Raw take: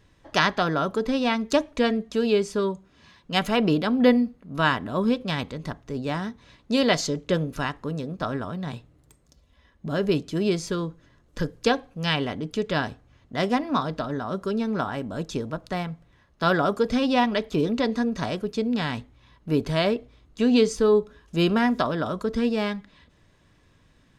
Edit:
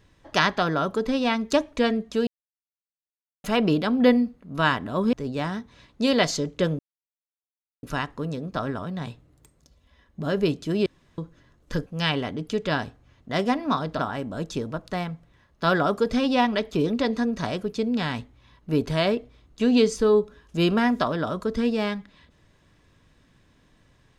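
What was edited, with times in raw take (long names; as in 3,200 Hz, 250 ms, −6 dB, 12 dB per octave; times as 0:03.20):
0:02.27–0:03.44: silence
0:05.13–0:05.83: remove
0:07.49: splice in silence 1.04 s
0:10.52–0:10.84: fill with room tone
0:11.52–0:11.90: remove
0:14.03–0:14.78: remove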